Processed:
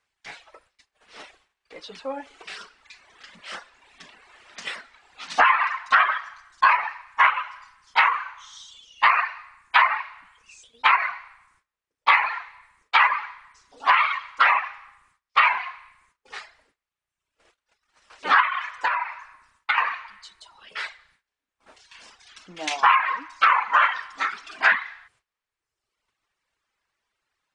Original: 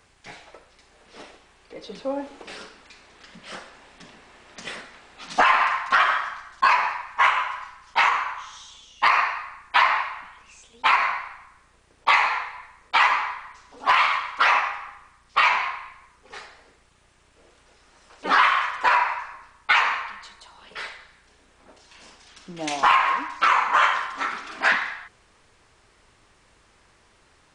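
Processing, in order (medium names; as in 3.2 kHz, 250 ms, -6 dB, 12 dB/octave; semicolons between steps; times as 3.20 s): gate -54 dBFS, range -19 dB; tilt shelf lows -8 dB, about 800 Hz; reverb removal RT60 1.1 s; treble shelf 4 kHz -9 dB; low-pass that closes with the level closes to 2.2 kHz, closed at -13 dBFS; 18.40–19.78 s: compression 4:1, threshold -21 dBFS, peak gain reduction 8 dB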